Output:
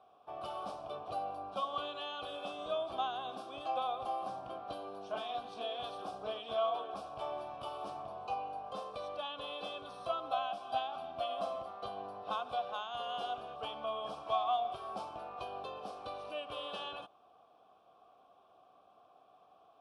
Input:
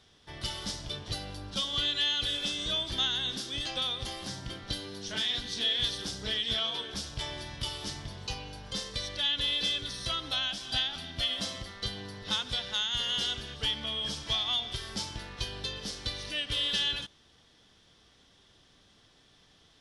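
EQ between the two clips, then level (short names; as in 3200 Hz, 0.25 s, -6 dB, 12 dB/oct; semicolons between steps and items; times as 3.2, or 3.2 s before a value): vowel filter a; low shelf 390 Hz -3 dB; band shelf 3500 Hz -15 dB 2.4 oct; +15.5 dB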